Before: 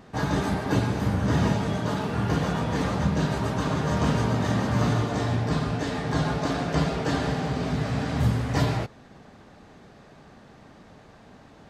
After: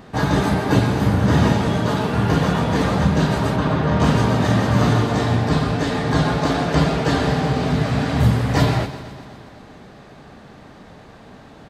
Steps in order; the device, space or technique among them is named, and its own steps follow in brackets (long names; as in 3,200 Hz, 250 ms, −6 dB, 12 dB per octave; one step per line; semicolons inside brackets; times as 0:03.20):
0:03.56–0:04.00: high-frequency loss of the air 180 metres
echo machine with several playback heads 125 ms, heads first and second, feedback 58%, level −18.5 dB
exciter from parts (in parallel at −12 dB: high-pass filter 4,300 Hz 24 dB per octave + soft clipping −36 dBFS, distortion −20 dB + high-pass filter 2,700 Hz 24 dB per octave)
on the sum: single-tap delay 169 ms −15 dB
level +7 dB